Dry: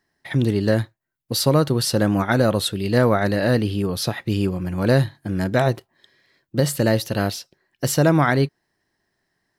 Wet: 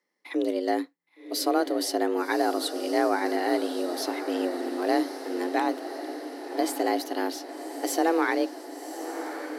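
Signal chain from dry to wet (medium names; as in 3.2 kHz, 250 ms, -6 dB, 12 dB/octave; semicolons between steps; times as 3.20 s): frequency shift +170 Hz; echo that smears into a reverb 1111 ms, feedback 62%, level -10 dB; trim -7.5 dB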